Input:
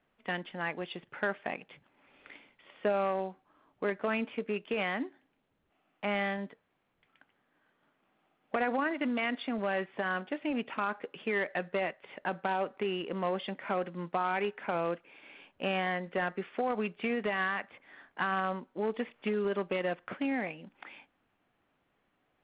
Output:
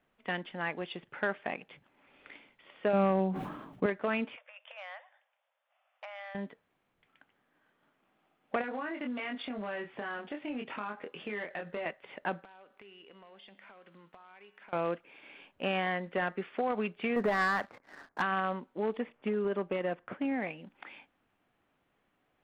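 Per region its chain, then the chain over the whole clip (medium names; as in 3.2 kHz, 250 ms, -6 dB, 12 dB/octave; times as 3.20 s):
2.93–3.86 s: peaking EQ 170 Hz +13.5 dB 1.6 oct + decay stretcher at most 48 dB/s
4.36–6.35 s: compression 10:1, threshold -38 dBFS + brick-wall FIR band-pass 500–3700 Hz + transformer saturation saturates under 1.1 kHz
8.61–11.86 s: doubling 24 ms -3.5 dB + compression 2.5:1, threshold -37 dBFS
12.44–14.73 s: tilt EQ +2.5 dB/octave + compression 12:1, threshold -43 dBFS + feedback comb 100 Hz, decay 1.6 s
17.16–18.22 s: low-pass 1.7 kHz 24 dB/octave + waveshaping leveller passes 2
18.97–20.42 s: treble shelf 2.1 kHz -8.5 dB + tape noise reduction on one side only decoder only
whole clip: none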